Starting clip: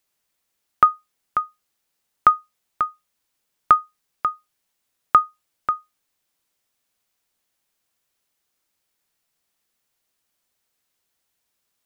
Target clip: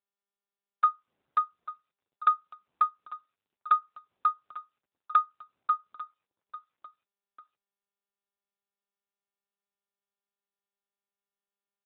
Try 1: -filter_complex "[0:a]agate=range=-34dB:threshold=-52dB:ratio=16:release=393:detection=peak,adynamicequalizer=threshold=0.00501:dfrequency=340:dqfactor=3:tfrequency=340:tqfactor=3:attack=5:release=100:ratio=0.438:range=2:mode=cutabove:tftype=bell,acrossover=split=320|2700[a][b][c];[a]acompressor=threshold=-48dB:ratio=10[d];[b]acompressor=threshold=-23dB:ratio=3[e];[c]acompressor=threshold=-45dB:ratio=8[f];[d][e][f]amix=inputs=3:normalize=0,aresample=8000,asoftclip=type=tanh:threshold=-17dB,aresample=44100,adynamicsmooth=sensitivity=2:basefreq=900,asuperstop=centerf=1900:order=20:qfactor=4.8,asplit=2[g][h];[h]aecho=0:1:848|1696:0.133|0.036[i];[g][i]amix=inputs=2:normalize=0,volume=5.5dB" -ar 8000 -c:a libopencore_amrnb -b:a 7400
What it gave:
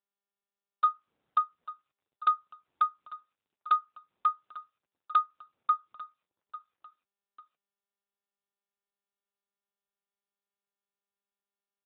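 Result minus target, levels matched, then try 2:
soft clip: distortion +11 dB
-filter_complex "[0:a]agate=range=-34dB:threshold=-52dB:ratio=16:release=393:detection=peak,adynamicequalizer=threshold=0.00501:dfrequency=340:dqfactor=3:tfrequency=340:tqfactor=3:attack=5:release=100:ratio=0.438:range=2:mode=cutabove:tftype=bell,acrossover=split=320|2700[a][b][c];[a]acompressor=threshold=-48dB:ratio=10[d];[b]acompressor=threshold=-23dB:ratio=3[e];[c]acompressor=threshold=-45dB:ratio=8[f];[d][e][f]amix=inputs=3:normalize=0,aresample=8000,asoftclip=type=tanh:threshold=-7dB,aresample=44100,adynamicsmooth=sensitivity=2:basefreq=900,asuperstop=centerf=1900:order=20:qfactor=4.8,asplit=2[g][h];[h]aecho=0:1:848|1696:0.133|0.036[i];[g][i]amix=inputs=2:normalize=0,volume=5.5dB" -ar 8000 -c:a libopencore_amrnb -b:a 7400

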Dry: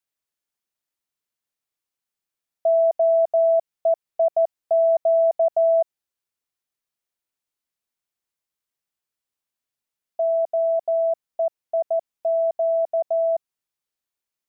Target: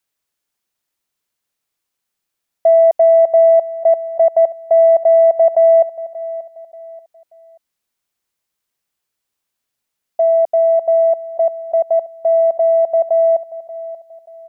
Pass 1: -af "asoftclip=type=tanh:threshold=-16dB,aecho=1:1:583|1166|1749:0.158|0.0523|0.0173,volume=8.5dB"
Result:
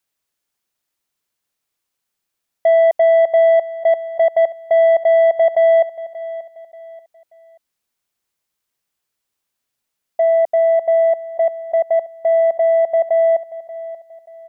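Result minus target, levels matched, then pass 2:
soft clip: distortion +17 dB
-af "asoftclip=type=tanh:threshold=-6dB,aecho=1:1:583|1166|1749:0.158|0.0523|0.0173,volume=8.5dB"

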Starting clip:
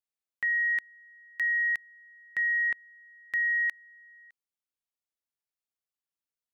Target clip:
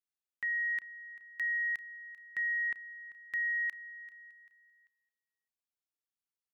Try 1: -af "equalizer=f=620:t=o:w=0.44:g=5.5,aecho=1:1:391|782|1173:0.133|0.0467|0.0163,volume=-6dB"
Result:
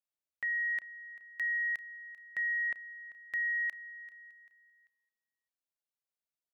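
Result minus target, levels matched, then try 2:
500 Hz band +6.0 dB
-af "equalizer=f=620:t=o:w=0.44:g=-6,aecho=1:1:391|782|1173:0.133|0.0467|0.0163,volume=-6dB"

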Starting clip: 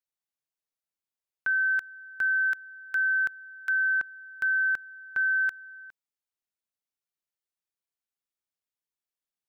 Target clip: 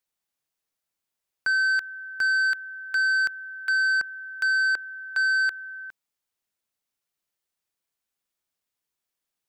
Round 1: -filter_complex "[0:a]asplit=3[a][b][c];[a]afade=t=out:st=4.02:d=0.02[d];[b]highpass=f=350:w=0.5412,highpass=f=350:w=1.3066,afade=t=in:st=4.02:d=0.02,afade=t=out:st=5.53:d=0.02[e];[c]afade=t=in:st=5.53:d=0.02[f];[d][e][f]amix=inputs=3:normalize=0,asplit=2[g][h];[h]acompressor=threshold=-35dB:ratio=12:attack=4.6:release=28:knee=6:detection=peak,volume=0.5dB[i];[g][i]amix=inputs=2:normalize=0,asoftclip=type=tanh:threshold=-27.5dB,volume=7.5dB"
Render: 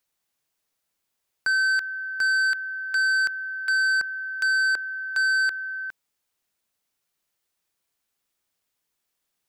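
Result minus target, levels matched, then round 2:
compressor: peak gain reduction +11 dB
-filter_complex "[0:a]asplit=3[a][b][c];[a]afade=t=out:st=4.02:d=0.02[d];[b]highpass=f=350:w=0.5412,highpass=f=350:w=1.3066,afade=t=in:st=4.02:d=0.02,afade=t=out:st=5.53:d=0.02[e];[c]afade=t=in:st=5.53:d=0.02[f];[d][e][f]amix=inputs=3:normalize=0,asoftclip=type=tanh:threshold=-27.5dB,volume=7.5dB"

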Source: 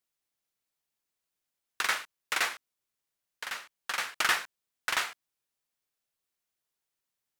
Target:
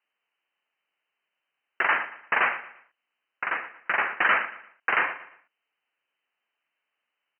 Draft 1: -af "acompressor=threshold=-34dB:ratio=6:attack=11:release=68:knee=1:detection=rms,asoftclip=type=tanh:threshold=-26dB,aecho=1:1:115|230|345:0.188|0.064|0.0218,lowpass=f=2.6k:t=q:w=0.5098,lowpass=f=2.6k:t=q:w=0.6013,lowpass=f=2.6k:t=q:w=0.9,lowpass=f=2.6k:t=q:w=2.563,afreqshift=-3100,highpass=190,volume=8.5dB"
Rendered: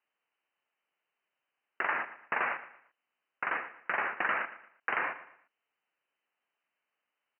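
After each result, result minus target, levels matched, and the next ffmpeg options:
compressor: peak gain reduction +12 dB; 4000 Hz band -4.5 dB
-af "asoftclip=type=tanh:threshold=-26dB,aecho=1:1:115|230|345:0.188|0.064|0.0218,lowpass=f=2.6k:t=q:w=0.5098,lowpass=f=2.6k:t=q:w=0.6013,lowpass=f=2.6k:t=q:w=0.9,lowpass=f=2.6k:t=q:w=2.563,afreqshift=-3100,highpass=190,volume=8.5dB"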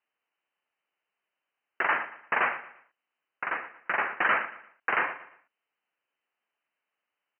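4000 Hz band -2.5 dB
-af "asoftclip=type=tanh:threshold=-26dB,aecho=1:1:115|230|345:0.188|0.064|0.0218,lowpass=f=2.6k:t=q:w=0.5098,lowpass=f=2.6k:t=q:w=0.6013,lowpass=f=2.6k:t=q:w=0.9,lowpass=f=2.6k:t=q:w=2.563,afreqshift=-3100,highpass=190,highshelf=f=2.2k:g=9,volume=8.5dB"

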